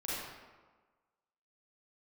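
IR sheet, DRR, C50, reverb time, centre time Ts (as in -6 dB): -9.0 dB, -4.0 dB, 1.4 s, 108 ms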